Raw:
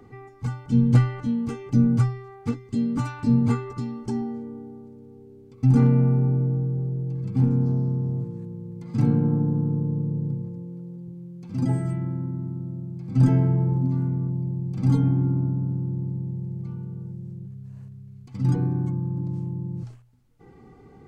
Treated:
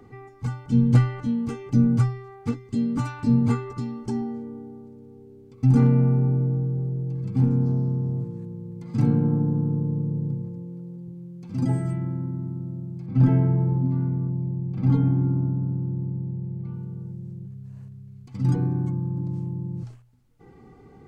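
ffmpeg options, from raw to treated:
ffmpeg -i in.wav -filter_complex "[0:a]asettb=1/sr,asplit=3[link_01][link_02][link_03];[link_01]atrim=end=13.064[link_04];[link_02]atrim=start=13.06:end=16.74,asetpts=PTS-STARTPTS,afade=type=in:duration=0.004:curve=qsin,afade=type=out:start_time=3.676:duration=0.004:curve=qsin,lowpass=3100[link_05];[link_03]atrim=start=16.736[link_06];[link_04][link_05]acrossfade=duration=0.004:curve1=hsin:curve2=qsin[link_07];[link_07][link_06]acrossfade=duration=0.004:curve1=qsin:curve2=hsin" out.wav

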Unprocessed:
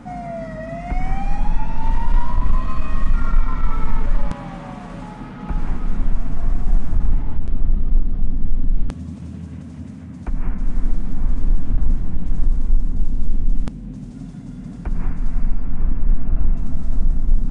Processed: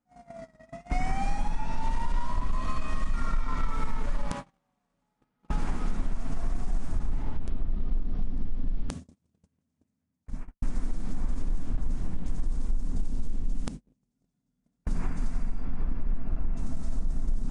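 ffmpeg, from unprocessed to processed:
ffmpeg -i in.wav -filter_complex "[0:a]asettb=1/sr,asplit=3[link_01][link_02][link_03];[link_01]atrim=end=4.504[link_04];[link_02]atrim=start=4.5:end=5.17,asetpts=PTS-STARTPTS,afade=type=in:duration=0.004:curve=qsin,afade=type=out:start_time=0.666:duration=0.004:curve=qsin,aeval=exprs='sgn(val(0))*max(abs(val(0))-0.00316,0)':channel_layout=same[link_05];[link_03]atrim=start=5.166[link_06];[link_04][link_05]acrossfade=duration=0.004:curve1=hsin:curve2=qsin[link_07];[link_07][link_06]acrossfade=duration=0.004:curve1=qsin:curve2=hsin,asplit=2[link_08][link_09];[link_08]atrim=end=10.62,asetpts=PTS-STARTPTS,afade=type=out:start_time=10.02:duration=0.6[link_10];[link_09]atrim=start=10.62,asetpts=PTS-STARTPTS,afade=type=in:duration=0.004:curve=hsin[link_11];[link_10][link_11]concat=n=2:v=0:a=1,agate=range=-42dB:threshold=-25dB:ratio=16:detection=peak,bass=frequency=250:gain=-5,treble=frequency=4000:gain=9,acompressor=threshold=-21dB:ratio=5" out.wav

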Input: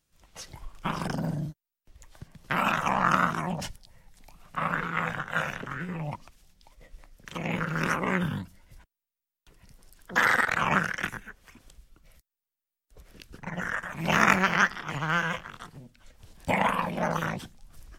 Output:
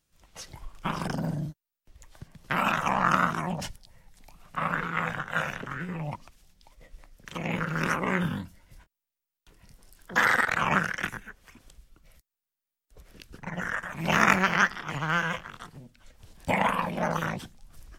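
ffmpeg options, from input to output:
ffmpeg -i in.wav -filter_complex "[0:a]asettb=1/sr,asplit=3[link_01][link_02][link_03];[link_01]atrim=end=8.144[link_04];[link_02]atrim=start=8.14:end=10.25,asetpts=PTS-STARTPTS,afade=type=in:duration=0.004:curve=qsin,afade=type=out:start_time=2.106:duration=0.004:curve=qsin,asplit=2[link_05][link_06];[link_06]adelay=24,volume=-9dB[link_07];[link_05][link_07]amix=inputs=2:normalize=0,atrim=end_sample=93051[link_08];[link_03]atrim=start=10.246[link_09];[link_04][link_08]acrossfade=duration=0.004:curve1=hsin:curve2=qsin[link_10];[link_10][link_09]acrossfade=duration=0.004:curve1=qsin:curve2=hsin" out.wav

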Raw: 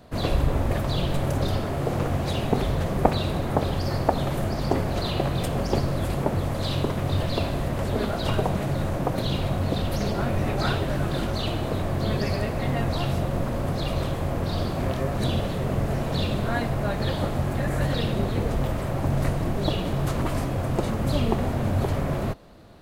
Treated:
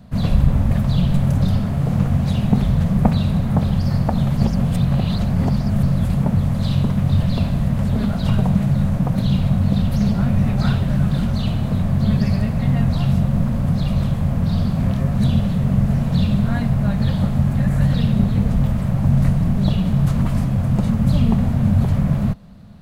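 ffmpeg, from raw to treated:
ffmpeg -i in.wav -filter_complex "[0:a]asplit=3[link_01][link_02][link_03];[link_01]atrim=end=4.372[link_04];[link_02]atrim=start=4.368:end=5.832,asetpts=PTS-STARTPTS,areverse[link_05];[link_03]atrim=start=5.828[link_06];[link_04][link_05]acrossfade=duration=0.004:curve1=hsin:curve2=hsin[link_07];[link_07][link_06]acrossfade=duration=0.004:curve1=hsin:curve2=hsin,lowshelf=frequency=260:width_type=q:width=3:gain=8.5,volume=-1.5dB" out.wav

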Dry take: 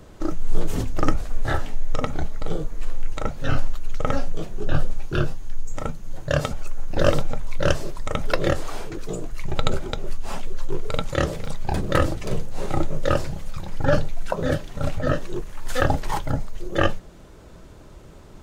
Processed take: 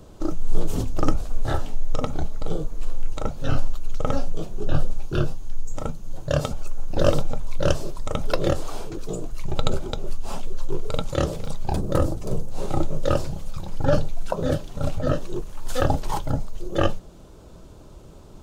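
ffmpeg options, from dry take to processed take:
ffmpeg -i in.wav -filter_complex "[0:a]asettb=1/sr,asplit=3[link_01][link_02][link_03];[link_01]atrim=end=11.764[link_04];[link_02]atrim=start=11.76:end=12.48,asetpts=PTS-STARTPTS,afade=type=in:duration=0.004:curve=qsin,afade=type=out:start_time=0.716:duration=0.004:curve=qsin,equalizer=frequency=2800:width_type=o:width=1.9:gain=-9[link_05];[link_03]atrim=start=12.476[link_06];[link_04][link_05]acrossfade=duration=0.004:curve1=hsin:curve2=qsin[link_07];[link_07][link_06]acrossfade=duration=0.004:curve1=qsin:curve2=hsin,equalizer=frequency=1900:width=1.8:gain=-9.5" out.wav

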